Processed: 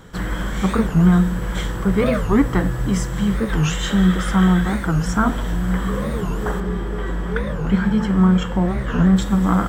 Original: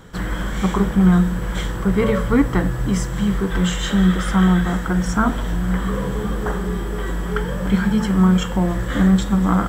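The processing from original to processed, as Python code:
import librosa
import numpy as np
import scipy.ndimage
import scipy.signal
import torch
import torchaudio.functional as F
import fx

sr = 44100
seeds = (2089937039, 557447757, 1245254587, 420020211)

y = fx.lowpass(x, sr, hz=3000.0, slope=6, at=(6.6, 9.17))
y = fx.record_warp(y, sr, rpm=45.0, depth_cents=250.0)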